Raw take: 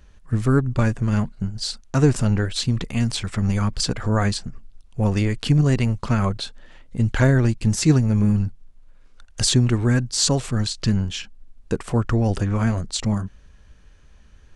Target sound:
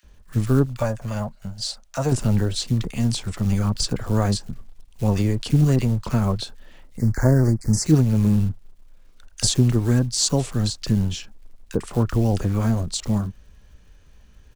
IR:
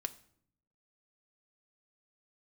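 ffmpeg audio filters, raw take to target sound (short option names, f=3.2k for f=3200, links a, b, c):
-filter_complex "[0:a]asettb=1/sr,asplit=3[a][b][c];[a]atrim=end=0.624[d];[b]atrim=start=0.62:end=2.09,asetpts=PTS-STARTPTS,afade=t=in:d=0.004:c=qsin,afade=t=out:st=1.466:d=0.004:c=qsin,lowshelf=f=470:t=q:w=3:g=-6.5[e];[c]atrim=start=2.086[f];[d][e]acrossfade=d=0.004:c1=hsin:c2=qsin[g];[g][f]acrossfade=d=0.004:c1=qsin:c2=hsin,acrossover=split=110|1400|3300[h][i][j][k];[j]acompressor=threshold=-44dB:ratio=6[l];[h][i][l][k]amix=inputs=4:normalize=0,acrusher=bits=7:mode=log:mix=0:aa=0.000001,asplit=3[m][n][o];[m]afade=t=out:st=6.96:d=0.02[p];[n]asuperstop=centerf=3100:order=8:qfactor=1.2,afade=t=in:st=6.96:d=0.02,afade=t=out:st=7.84:d=0.02[q];[o]afade=t=in:st=7.84:d=0.02[r];[p][q][r]amix=inputs=3:normalize=0,acrossover=split=1500[s][t];[s]adelay=30[u];[u][t]amix=inputs=2:normalize=0"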